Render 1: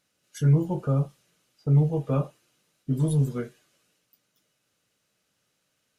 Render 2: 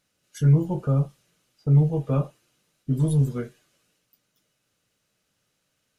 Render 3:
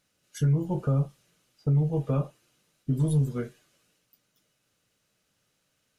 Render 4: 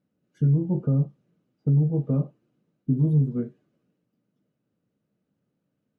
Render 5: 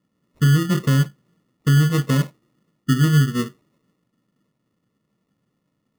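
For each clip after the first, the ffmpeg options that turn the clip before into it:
-af "lowshelf=f=87:g=8.5"
-af "alimiter=limit=-16.5dB:level=0:latency=1:release=279"
-af "bandpass=f=220:t=q:w=1.4:csg=0,volume=7dB"
-af "acrusher=samples=28:mix=1:aa=0.000001,volume=5dB"

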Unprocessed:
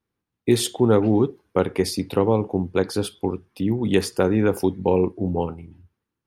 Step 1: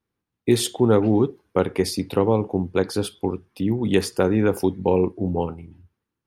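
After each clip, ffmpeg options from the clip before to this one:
-af anull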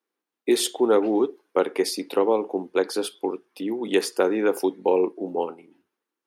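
-af "highpass=f=300:w=0.5412,highpass=f=300:w=1.3066"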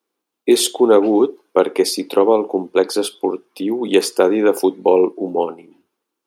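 -af "equalizer=f=1.8k:w=2.6:g=-6.5,volume=7.5dB"

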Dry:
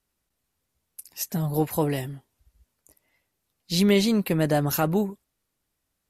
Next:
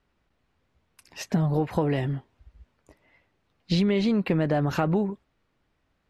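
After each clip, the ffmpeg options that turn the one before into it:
-filter_complex "[0:a]lowpass=2.7k,asplit=2[a][b];[b]alimiter=limit=-18.5dB:level=0:latency=1:release=23,volume=-1.5dB[c];[a][c]amix=inputs=2:normalize=0,acompressor=threshold=-24dB:ratio=10,volume=4dB"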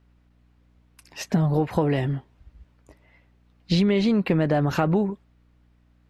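-af "aeval=exprs='val(0)+0.000891*(sin(2*PI*60*n/s)+sin(2*PI*2*60*n/s)/2+sin(2*PI*3*60*n/s)/3+sin(2*PI*4*60*n/s)/4+sin(2*PI*5*60*n/s)/5)':c=same,volume=2.5dB"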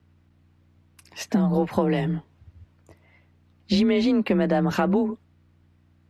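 -af "afreqshift=28"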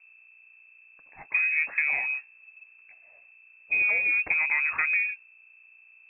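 -af "aeval=exprs='val(0)+0.00316*(sin(2*PI*60*n/s)+sin(2*PI*2*60*n/s)/2+sin(2*PI*3*60*n/s)/3+sin(2*PI*4*60*n/s)/4+sin(2*PI*5*60*n/s)/5)':c=same,aeval=exprs='0.473*(cos(1*acos(clip(val(0)/0.473,-1,1)))-cos(1*PI/2))+0.0119*(cos(6*acos(clip(val(0)/0.473,-1,1)))-cos(6*PI/2))':c=same,lowpass=f=2.3k:t=q:w=0.5098,lowpass=f=2.3k:t=q:w=0.6013,lowpass=f=2.3k:t=q:w=0.9,lowpass=f=2.3k:t=q:w=2.563,afreqshift=-2700,volume=-4.5dB"

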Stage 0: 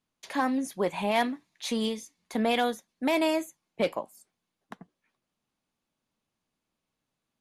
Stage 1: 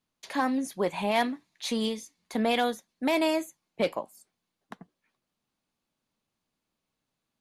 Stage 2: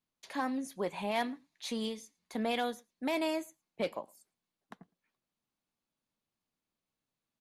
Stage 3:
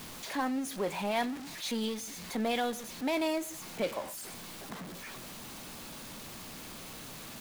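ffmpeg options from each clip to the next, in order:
-af "equalizer=f=4.3k:w=4.2:g=2.5"
-filter_complex "[0:a]asplit=2[a][b];[b]adelay=110.8,volume=-27dB,highshelf=f=4k:g=-2.49[c];[a][c]amix=inputs=2:normalize=0,volume=-7dB"
-af "aeval=exprs='val(0)+0.5*0.0133*sgn(val(0))':c=same"

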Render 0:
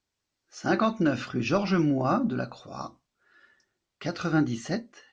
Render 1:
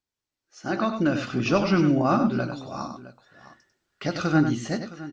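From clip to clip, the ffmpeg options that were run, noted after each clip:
-filter_complex "[0:a]dynaudnorm=f=360:g=5:m=11.5dB,asplit=2[a][b];[b]aecho=0:1:97|664:0.398|0.141[c];[a][c]amix=inputs=2:normalize=0,volume=-7dB"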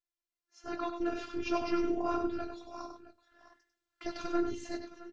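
-af "aeval=exprs='val(0)*sin(2*PI*88*n/s)':c=same,afftfilt=real='hypot(re,im)*cos(PI*b)':imag='0':win_size=512:overlap=0.75,flanger=delay=0.5:depth=4.3:regen=-75:speed=1.3:shape=triangular"

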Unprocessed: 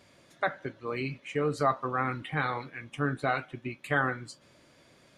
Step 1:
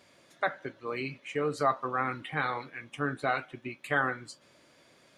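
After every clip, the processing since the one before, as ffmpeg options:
-af "lowshelf=f=160:g=-10"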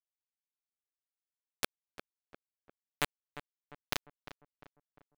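-filter_complex "[0:a]acrossover=split=460[a][b];[b]acompressor=threshold=-48dB:ratio=2[c];[a][c]amix=inputs=2:normalize=0,acrusher=bits=3:mix=0:aa=0.000001,asplit=2[d][e];[e]adelay=350,lowpass=f=1.6k:p=1,volume=-11.5dB,asplit=2[f][g];[g]adelay=350,lowpass=f=1.6k:p=1,volume=0.53,asplit=2[h][i];[i]adelay=350,lowpass=f=1.6k:p=1,volume=0.53,asplit=2[j][k];[k]adelay=350,lowpass=f=1.6k:p=1,volume=0.53,asplit=2[l][m];[m]adelay=350,lowpass=f=1.6k:p=1,volume=0.53,asplit=2[n][o];[o]adelay=350,lowpass=f=1.6k:p=1,volume=0.53[p];[d][f][h][j][l][n][p]amix=inputs=7:normalize=0,volume=4.5dB"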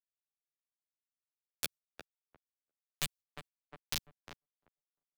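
-filter_complex "[0:a]agate=range=-37dB:threshold=-56dB:ratio=16:detection=peak,acrossover=split=170|3000[a][b][c];[b]acompressor=threshold=-50dB:ratio=4[d];[a][d][c]amix=inputs=3:normalize=0,asplit=2[e][f];[f]adelay=12,volume=-2.5dB[g];[e][g]amix=inputs=2:normalize=0,volume=1.5dB"

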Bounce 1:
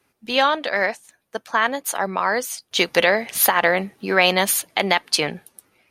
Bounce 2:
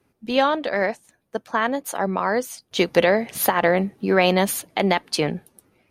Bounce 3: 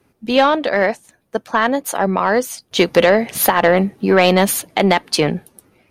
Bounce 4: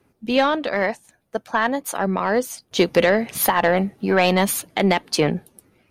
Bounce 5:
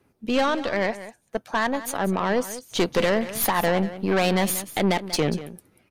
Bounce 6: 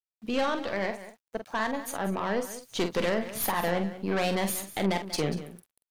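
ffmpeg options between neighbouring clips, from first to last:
-af "tiltshelf=f=680:g=6.5"
-af "acontrast=73"
-af "aphaser=in_gain=1:out_gain=1:delay=1.5:decay=0.23:speed=0.38:type=triangular,volume=-4.5dB"
-af "aeval=exprs='(tanh(6.31*val(0)+0.5)-tanh(0.5))/6.31':c=same,aecho=1:1:188:0.188"
-filter_complex "[0:a]aeval=exprs='val(0)*gte(abs(val(0)),0.00335)':c=same,asplit=2[a][b];[b]adelay=46,volume=-8dB[c];[a][c]amix=inputs=2:normalize=0,volume=-6.5dB"

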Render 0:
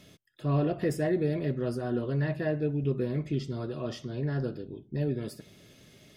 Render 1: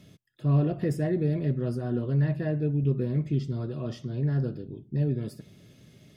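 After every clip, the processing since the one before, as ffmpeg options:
-af "equalizer=f=130:w=0.57:g=9.5,volume=-4dB"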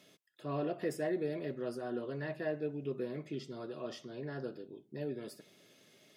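-af "highpass=430,volume=-1.5dB"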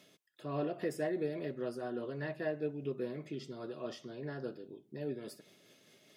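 -af "tremolo=f=4.9:d=0.29,volume=1dB"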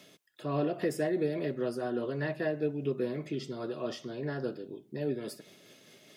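-filter_complex "[0:a]acrossover=split=370|3000[a][b][c];[b]acompressor=threshold=-39dB:ratio=2[d];[a][d][c]amix=inputs=3:normalize=0,volume=6.5dB"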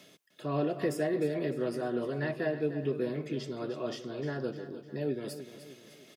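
-af "aecho=1:1:303|606|909|1212:0.251|0.111|0.0486|0.0214"

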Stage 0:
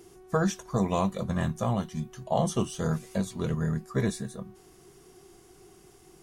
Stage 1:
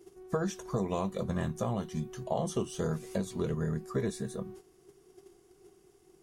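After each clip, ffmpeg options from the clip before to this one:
-af "agate=range=-11dB:threshold=-51dB:ratio=16:detection=peak,equalizer=f=400:t=o:w=0.66:g=7,acompressor=threshold=-30dB:ratio=3"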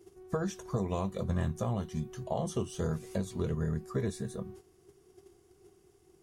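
-af "equalizer=f=84:t=o:w=0.83:g=10,volume=-2dB"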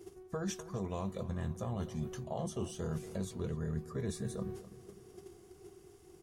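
-filter_complex "[0:a]areverse,acompressor=threshold=-40dB:ratio=6,areverse,asplit=2[a][b];[b]adelay=253,lowpass=f=3.1k:p=1,volume=-15dB,asplit=2[c][d];[d]adelay=253,lowpass=f=3.1k:p=1,volume=0.54,asplit=2[e][f];[f]adelay=253,lowpass=f=3.1k:p=1,volume=0.54,asplit=2[g][h];[h]adelay=253,lowpass=f=3.1k:p=1,volume=0.54,asplit=2[i][j];[j]adelay=253,lowpass=f=3.1k:p=1,volume=0.54[k];[a][c][e][g][i][k]amix=inputs=6:normalize=0,volume=5dB"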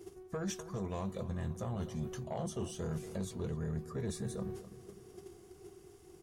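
-af "asoftclip=type=tanh:threshold=-30dB,volume=1dB"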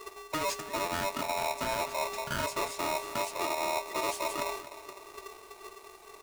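-af "aeval=exprs='val(0)*sgn(sin(2*PI*780*n/s))':c=same,volume=5.5dB"

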